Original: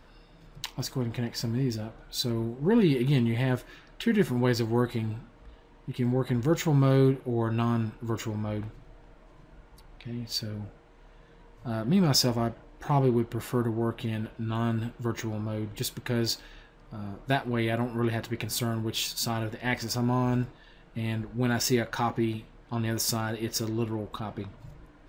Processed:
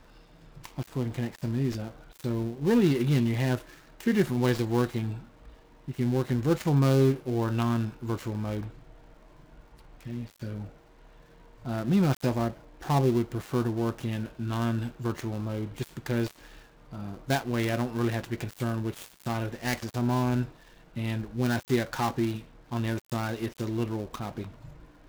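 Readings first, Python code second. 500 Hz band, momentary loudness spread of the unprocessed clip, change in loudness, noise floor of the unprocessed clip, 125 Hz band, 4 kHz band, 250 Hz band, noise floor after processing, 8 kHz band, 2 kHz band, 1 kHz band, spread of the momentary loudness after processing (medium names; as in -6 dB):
0.0 dB, 14 LU, -0.5 dB, -55 dBFS, 0.0 dB, -8.0 dB, 0.0 dB, -56 dBFS, -9.5 dB, -1.0 dB, -0.5 dB, 14 LU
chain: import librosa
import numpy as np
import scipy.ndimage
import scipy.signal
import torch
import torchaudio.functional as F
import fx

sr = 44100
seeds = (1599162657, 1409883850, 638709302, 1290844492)

y = fx.dead_time(x, sr, dead_ms=0.14)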